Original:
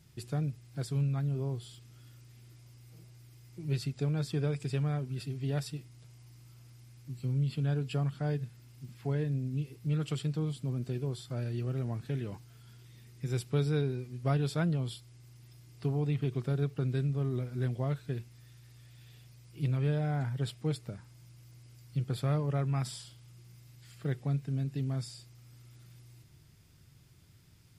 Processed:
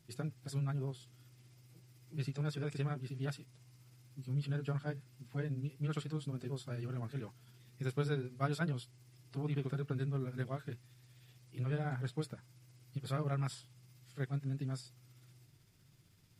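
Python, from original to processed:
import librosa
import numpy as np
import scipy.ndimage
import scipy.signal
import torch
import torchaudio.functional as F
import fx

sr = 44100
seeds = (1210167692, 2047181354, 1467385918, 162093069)

y = fx.dynamic_eq(x, sr, hz=1400.0, q=1.8, threshold_db=-60.0, ratio=4.0, max_db=6)
y = fx.stretch_grains(y, sr, factor=0.59, grain_ms=127.0)
y = fx.peak_eq(y, sr, hz=64.0, db=-14.5, octaves=0.57)
y = F.gain(torch.from_numpy(y), -3.5).numpy()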